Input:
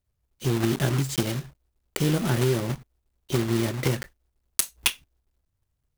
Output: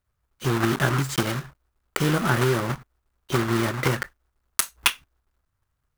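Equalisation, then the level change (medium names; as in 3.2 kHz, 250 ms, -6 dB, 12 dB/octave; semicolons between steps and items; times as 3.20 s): peaking EQ 1.3 kHz +11.5 dB 1.3 oct; 0.0 dB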